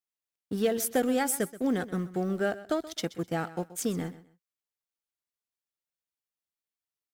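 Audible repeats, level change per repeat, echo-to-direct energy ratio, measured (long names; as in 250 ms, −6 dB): 2, −13.0 dB, −16.5 dB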